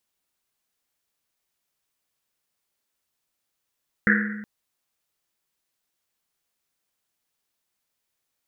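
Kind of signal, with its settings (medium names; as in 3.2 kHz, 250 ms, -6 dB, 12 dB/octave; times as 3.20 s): Risset drum length 0.37 s, pitch 210 Hz, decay 1.43 s, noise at 1.7 kHz, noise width 530 Hz, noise 50%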